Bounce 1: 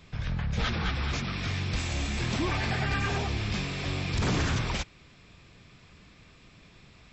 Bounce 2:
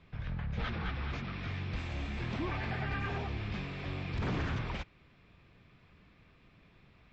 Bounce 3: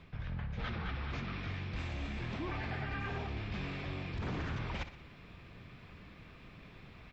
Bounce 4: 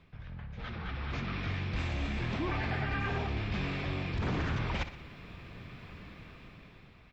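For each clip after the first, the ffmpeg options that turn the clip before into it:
-af "lowpass=2800,volume=0.473"
-af "areverse,acompressor=threshold=0.00501:ratio=4,areverse,aecho=1:1:61|122|183|244|305:0.224|0.11|0.0538|0.0263|0.0129,volume=2.51"
-af "dynaudnorm=f=290:g=7:m=3.35,volume=0.562"

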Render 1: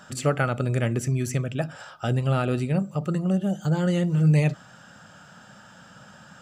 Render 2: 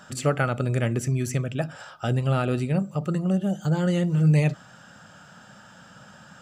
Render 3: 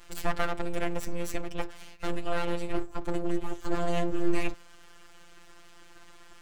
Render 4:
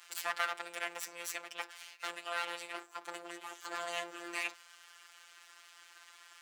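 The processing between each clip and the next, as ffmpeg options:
-af anull
-af "aeval=exprs='abs(val(0))':c=same,afftfilt=real='hypot(re,im)*cos(PI*b)':imag='0':win_size=1024:overlap=0.75"
-af "highpass=1200,volume=1.12"

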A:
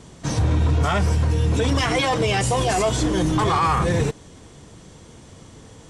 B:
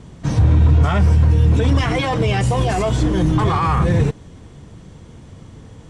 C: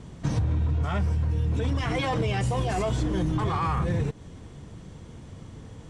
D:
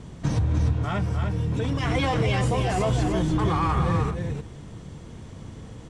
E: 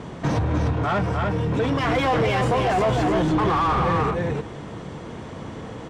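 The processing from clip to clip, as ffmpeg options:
-af "bass=f=250:g=7,treble=f=4000:g=-7"
-af "acompressor=threshold=0.112:ratio=6,volume=0.668"
-af "aecho=1:1:302:0.531,volume=1.26"
-filter_complex "[0:a]asplit=2[s0][s1];[s1]highpass=f=720:p=1,volume=14.1,asoftclip=type=tanh:threshold=0.266[s2];[s0][s2]amix=inputs=2:normalize=0,lowpass=f=1100:p=1,volume=0.501"

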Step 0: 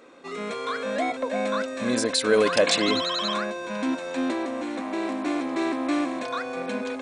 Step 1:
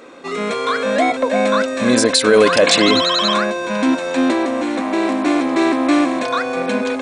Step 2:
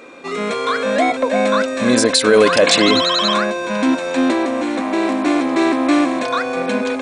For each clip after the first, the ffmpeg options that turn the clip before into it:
-af "alimiter=level_in=3.76:limit=0.891:release=50:level=0:latency=1,volume=0.891"
-af "aeval=exprs='val(0)+0.00562*sin(2*PI*2400*n/s)':c=same"

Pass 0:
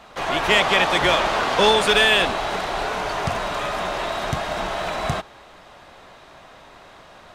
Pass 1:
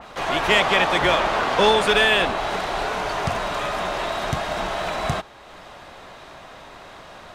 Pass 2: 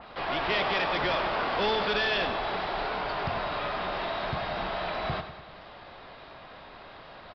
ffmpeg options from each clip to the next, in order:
-af "acompressor=mode=upward:threshold=0.0178:ratio=2.5,adynamicequalizer=threshold=0.0398:dfrequency=2900:dqfactor=0.7:tfrequency=2900:tqfactor=0.7:attack=5:release=100:ratio=0.375:range=2.5:mode=cutabove:tftype=highshelf"
-af "aresample=11025,asoftclip=type=tanh:threshold=0.133,aresample=44100,aecho=1:1:98|196|294|392|490|588|686:0.282|0.169|0.101|0.0609|0.0365|0.0219|0.0131,volume=0.531"

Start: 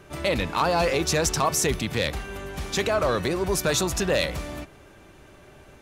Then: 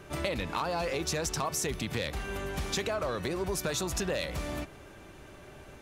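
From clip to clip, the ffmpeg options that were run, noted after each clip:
-af "acompressor=threshold=0.0355:ratio=6"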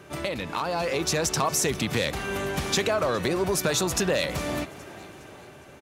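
-filter_complex "[0:a]dynaudnorm=f=200:g=9:m=1.88,highpass=97,asplit=5[s0][s1][s2][s3][s4];[s1]adelay=411,afreqshift=90,volume=0.0891[s5];[s2]adelay=822,afreqshift=180,volume=0.0437[s6];[s3]adelay=1233,afreqshift=270,volume=0.0214[s7];[s4]adelay=1644,afreqshift=360,volume=0.0105[s8];[s0][s5][s6][s7][s8]amix=inputs=5:normalize=0,volume=1.26"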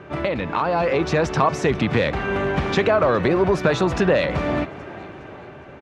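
-af "lowpass=2200,volume=2.37"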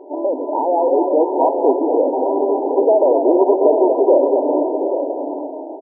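-filter_complex "[0:a]asplit=2[s0][s1];[s1]asplit=6[s2][s3][s4][s5][s6][s7];[s2]adelay=241,afreqshift=32,volume=0.447[s8];[s3]adelay=482,afreqshift=64,volume=0.232[s9];[s4]adelay=723,afreqshift=96,volume=0.12[s10];[s5]adelay=964,afreqshift=128,volume=0.0631[s11];[s6]adelay=1205,afreqshift=160,volume=0.0327[s12];[s7]adelay=1446,afreqshift=192,volume=0.017[s13];[s8][s9][s10][s11][s12][s13]amix=inputs=6:normalize=0[s14];[s0][s14]amix=inputs=2:normalize=0,afftfilt=real='re*between(b*sr/4096,250,1000)':imag='im*between(b*sr/4096,250,1000)':win_size=4096:overlap=0.75,asplit=2[s15][s16];[s16]aecho=0:1:411|730|833:0.15|0.299|0.355[s17];[s15][s17]amix=inputs=2:normalize=0,volume=1.78"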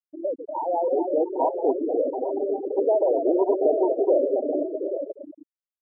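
-af "afwtdn=0.0794,afftfilt=real='re*gte(hypot(re,im),0.501)':imag='im*gte(hypot(re,im),0.501)':win_size=1024:overlap=0.75,aemphasis=mode=production:type=75kf,volume=0.422"

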